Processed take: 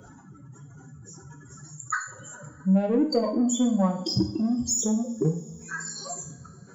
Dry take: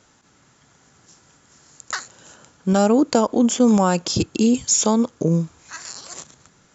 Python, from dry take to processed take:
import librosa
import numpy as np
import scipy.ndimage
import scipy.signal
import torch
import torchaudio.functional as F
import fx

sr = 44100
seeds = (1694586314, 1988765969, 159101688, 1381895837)

p1 = fx.spec_expand(x, sr, power=3.4)
p2 = fx.dereverb_blind(p1, sr, rt60_s=0.71)
p3 = 10.0 ** (-20.0 / 20.0) * np.tanh(p2 / 10.0 ** (-20.0 / 20.0))
p4 = p2 + (p3 * librosa.db_to_amplitude(-4.0))
p5 = fx.rev_double_slope(p4, sr, seeds[0], early_s=0.44, late_s=3.2, knee_db=-27, drr_db=1.5)
p6 = fx.band_squash(p5, sr, depth_pct=40)
y = p6 * librosa.db_to_amplitude(-6.5)